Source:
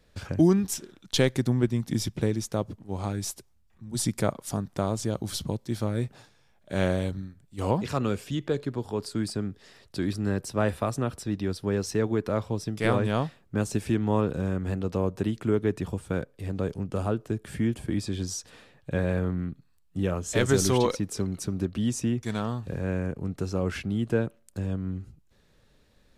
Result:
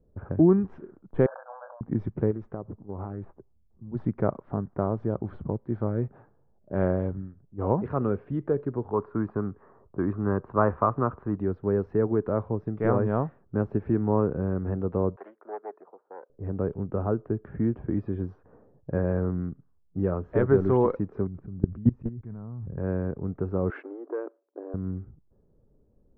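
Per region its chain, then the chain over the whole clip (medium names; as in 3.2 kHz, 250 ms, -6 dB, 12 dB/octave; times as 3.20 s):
1.26–1.81 s: brick-wall FIR band-pass 510–1700 Hz + doubling 20 ms -7 dB + decay stretcher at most 55 dB/s
2.31–3.29 s: compression 5:1, threshold -30 dBFS + loudspeaker Doppler distortion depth 0.3 ms
8.93–11.37 s: low-pass 3.3 kHz 24 dB/octave + peaking EQ 1.1 kHz +12 dB 0.74 oct
15.16–16.30 s: self-modulated delay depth 0.35 ms + Bessel high-pass 850 Hz, order 4 + distance through air 190 m
21.27–22.78 s: level held to a coarse grid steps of 24 dB + tone controls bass +14 dB, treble 0 dB
23.70–24.74 s: waveshaping leveller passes 1 + compression 12:1, threshold -25 dBFS + brick-wall FIR high-pass 270 Hz
whole clip: low-pass 1.4 kHz 24 dB/octave; level-controlled noise filter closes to 450 Hz, open at -25.5 dBFS; peaking EQ 400 Hz +4 dB 0.39 oct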